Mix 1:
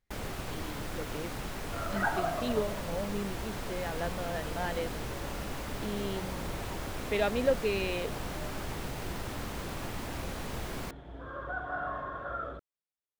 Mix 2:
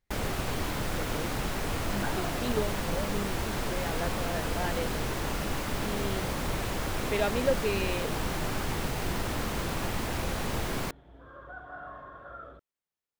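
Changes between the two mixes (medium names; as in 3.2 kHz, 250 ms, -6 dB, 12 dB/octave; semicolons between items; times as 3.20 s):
first sound +6.5 dB; second sound -7.5 dB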